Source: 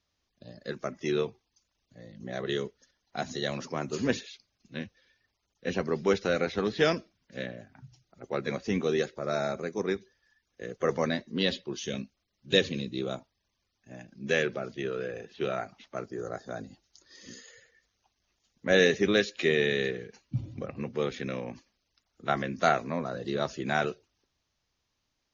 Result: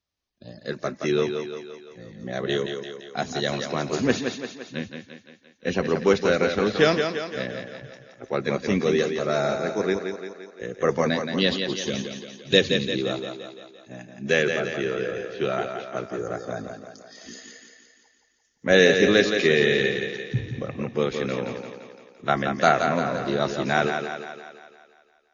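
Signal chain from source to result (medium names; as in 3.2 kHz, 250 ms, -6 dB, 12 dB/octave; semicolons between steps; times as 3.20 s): spectral noise reduction 12 dB; thinning echo 172 ms, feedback 57%, high-pass 160 Hz, level -6 dB; trim +5.5 dB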